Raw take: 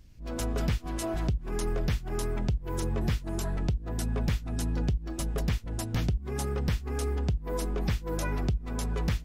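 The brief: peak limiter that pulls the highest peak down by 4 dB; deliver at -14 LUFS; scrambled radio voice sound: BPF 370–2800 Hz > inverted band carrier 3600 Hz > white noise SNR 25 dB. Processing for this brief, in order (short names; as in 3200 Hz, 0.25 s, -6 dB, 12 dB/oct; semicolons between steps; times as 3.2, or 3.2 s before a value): limiter -23.5 dBFS; BPF 370–2800 Hz; inverted band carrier 3600 Hz; white noise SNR 25 dB; gain +24 dB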